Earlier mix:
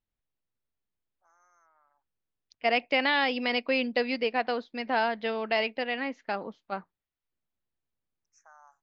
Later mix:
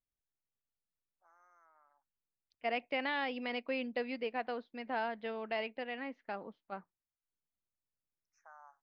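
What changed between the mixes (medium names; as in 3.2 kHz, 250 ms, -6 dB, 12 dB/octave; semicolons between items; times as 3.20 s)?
second voice -8.5 dB; master: add distance through air 210 m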